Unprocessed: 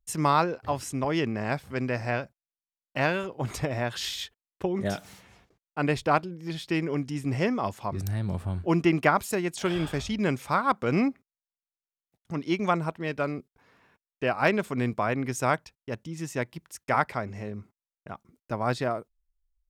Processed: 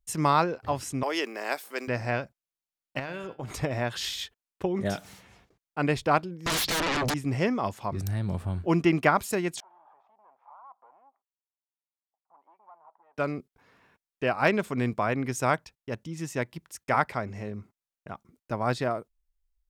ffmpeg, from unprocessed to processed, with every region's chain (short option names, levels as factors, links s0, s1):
-filter_complex "[0:a]asettb=1/sr,asplit=3[s0][s1][s2];[s0]atrim=end=1.034[s3];[s1]atrim=start=1.03:end=1.88,asetpts=PTS-STARTPTS,afade=t=in:d=0.004:c=qsin,afade=t=out:st=0.846:d=0.004:c=qsin,highpass=f=300:w=0.5412,highpass=f=300:w=1.3066,aemphasis=mode=production:type=bsi[s4];[s2]atrim=start=1.876[s5];[s3][s4]acrossfade=d=0.004:c1=hsin:c2=qsin[s6];[s6][s5]acrossfade=d=0.004:c1=qsin:c2=hsin,asettb=1/sr,asplit=3[s7][s8][s9];[s7]atrim=end=2.994[s10];[s8]atrim=start=2.99:end=3.59,asetpts=PTS-STARTPTS,afade=t=in:d=0.004:c=qsin,afade=t=out:st=0.596:d=0.004:c=qsin,bandreject=f=151:t=h:w=4,bandreject=f=302:t=h:w=4,bandreject=f=453:t=h:w=4,bandreject=f=604:t=h:w=4,bandreject=f=755:t=h:w=4,bandreject=f=906:t=h:w=4,bandreject=f=1057:t=h:w=4,bandreject=f=1208:t=h:w=4,bandreject=f=1359:t=h:w=4,bandreject=f=1510:t=h:w=4,bandreject=f=1661:t=h:w=4,bandreject=f=1812:t=h:w=4,bandreject=f=1963:t=h:w=4,bandreject=f=2114:t=h:w=4,bandreject=f=2265:t=h:w=4,bandreject=f=2416:t=h:w=4,bandreject=f=2567:t=h:w=4,bandreject=f=2718:t=h:w=4,bandreject=f=2869:t=h:w=4,bandreject=f=3020:t=h:w=4,bandreject=f=3171:t=h:w=4,bandreject=f=3322:t=h:w=4,bandreject=f=3473:t=h:w=4,bandreject=f=3624:t=h:w=4,bandreject=f=3775:t=h:w=4,bandreject=f=3926:t=h:w=4,bandreject=f=4077:t=h:w=4,bandreject=f=4228:t=h:w=4,bandreject=f=4379:t=h:w=4,bandreject=f=4530:t=h:w=4,bandreject=f=4681:t=h:w=4,bandreject=f=4832:t=h:w=4,bandreject=f=4983:t=h:w=4,bandreject=f=5134:t=h:w=4,bandreject=f=5285:t=h:w=4,agate=range=0.0224:threshold=0.00794:ratio=3:release=100:detection=peak,acompressor=threshold=0.0251:ratio=6:attack=3.2:release=140:knee=1:detection=peak[s11];[s9]atrim=start=3.586[s12];[s10][s11]acrossfade=d=0.004:c1=hsin:c2=qsin[s13];[s13][s12]acrossfade=d=0.004:c1=qsin:c2=hsin,asettb=1/sr,asplit=3[s14][s15][s16];[s14]atrim=end=6.464[s17];[s15]atrim=start=6.46:end=7.14,asetpts=PTS-STARTPTS,afade=t=in:d=0.004:c=qsin,afade=t=out:st=0.676:d=0.004:c=qsin,lowpass=6000,acompressor=threshold=0.0316:ratio=8:attack=3.2:release=140:knee=1:detection=peak,aeval=exprs='0.0631*sin(PI/2*8.91*val(0)/0.0631)':c=same[s18];[s16]atrim=start=7.136[s19];[s17][s18]acrossfade=d=0.004:c1=hsin:c2=qsin[s20];[s20][s19]acrossfade=d=0.004:c1=qsin:c2=hsin,asettb=1/sr,asplit=3[s21][s22][s23];[s21]atrim=end=9.604[s24];[s22]atrim=start=9.6:end=13.18,asetpts=PTS-STARTPTS,afade=t=in:d=0.004:c=qsin,afade=t=out:st=3.576:d=0.004:c=qsin,acompressor=threshold=0.0178:ratio=4:attack=3.2:release=140:knee=1:detection=peak,aeval=exprs='(tanh(89.1*val(0)+0.4)-tanh(0.4))/89.1':c=same,asuperpass=centerf=870:order=4:qfactor=2.5[s25];[s23]atrim=start=13.176[s26];[s24][s25]acrossfade=d=0.004:c1=hsin:c2=qsin[s27];[s27][s26]acrossfade=d=0.004:c1=qsin:c2=hsin"